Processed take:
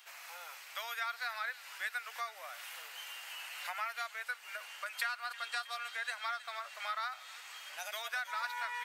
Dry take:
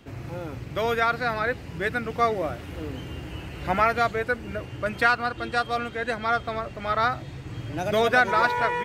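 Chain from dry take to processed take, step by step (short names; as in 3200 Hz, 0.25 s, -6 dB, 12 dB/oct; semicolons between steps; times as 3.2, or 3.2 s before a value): compressor 12:1, threshold -30 dBFS, peak gain reduction 16.5 dB; Bessel high-pass 1300 Hz, order 6; high shelf 6900 Hz +11 dB; thin delay 0.319 s, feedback 55%, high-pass 1700 Hz, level -14.5 dB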